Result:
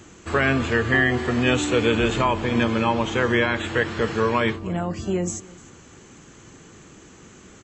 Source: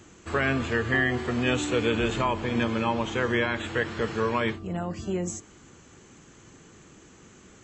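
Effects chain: delay 303 ms -22.5 dB; trim +5 dB

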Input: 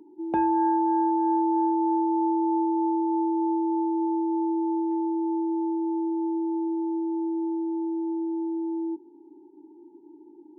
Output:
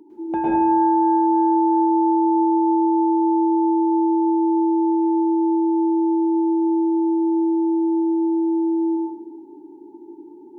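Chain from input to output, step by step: in parallel at +1 dB: peak limiter -24 dBFS, peak gain reduction 9 dB; on the sum: plate-style reverb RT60 1.1 s, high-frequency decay 0.6×, pre-delay 95 ms, DRR -6.5 dB; trim -4 dB

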